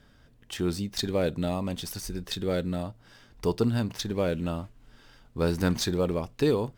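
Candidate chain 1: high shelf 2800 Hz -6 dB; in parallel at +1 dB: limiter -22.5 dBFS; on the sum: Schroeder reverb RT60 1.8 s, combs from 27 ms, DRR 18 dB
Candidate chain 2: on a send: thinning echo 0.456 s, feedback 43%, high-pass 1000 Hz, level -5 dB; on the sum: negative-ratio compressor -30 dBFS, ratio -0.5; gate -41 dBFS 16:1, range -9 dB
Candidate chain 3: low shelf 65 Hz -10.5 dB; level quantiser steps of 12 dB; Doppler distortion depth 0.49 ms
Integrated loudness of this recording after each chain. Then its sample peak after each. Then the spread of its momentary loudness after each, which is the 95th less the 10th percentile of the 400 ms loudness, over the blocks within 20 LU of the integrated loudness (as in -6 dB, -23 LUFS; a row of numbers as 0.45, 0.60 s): -25.0, -32.5, -35.0 LUFS; -10.5, -15.0, -14.0 dBFS; 9, 9, 12 LU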